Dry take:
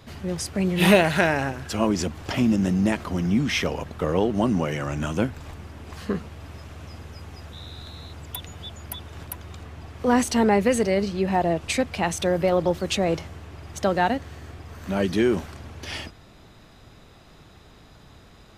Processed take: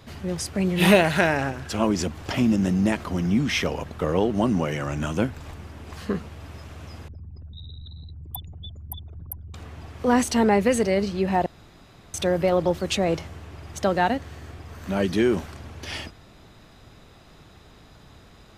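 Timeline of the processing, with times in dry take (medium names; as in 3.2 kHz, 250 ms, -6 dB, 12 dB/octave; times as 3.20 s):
1.37–1.83 s: loudspeaker Doppler distortion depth 0.14 ms
7.08–9.54 s: resonances exaggerated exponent 3
11.46–12.14 s: room tone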